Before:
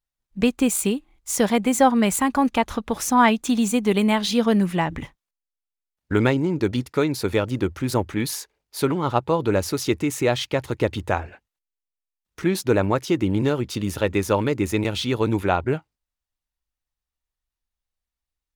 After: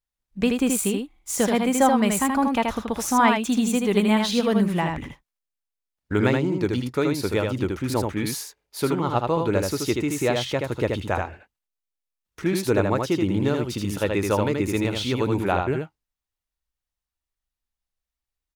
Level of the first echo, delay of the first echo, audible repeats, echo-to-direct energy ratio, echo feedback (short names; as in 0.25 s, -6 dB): -4.0 dB, 79 ms, 1, -4.0 dB, no steady repeat